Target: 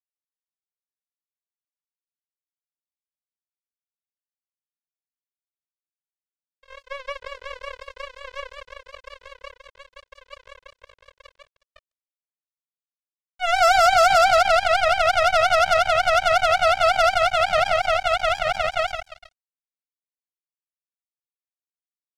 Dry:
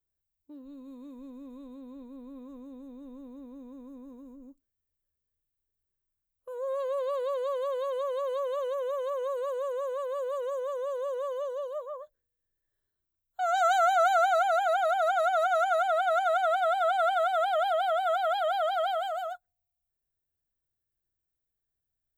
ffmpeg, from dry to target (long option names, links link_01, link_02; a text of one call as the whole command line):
ffmpeg -i in.wav -filter_complex "[0:a]lowpass=3800,asplit=2[link_01][link_02];[link_02]adelay=148,lowpass=frequency=1400:poles=1,volume=-14dB,asplit=2[link_03][link_04];[link_04]adelay=148,lowpass=frequency=1400:poles=1,volume=0.33,asplit=2[link_05][link_06];[link_06]adelay=148,lowpass=frequency=1400:poles=1,volume=0.33[link_07];[link_01][link_03][link_05][link_07]amix=inputs=4:normalize=0,acrusher=bits=3:mix=0:aa=0.5,volume=7dB" out.wav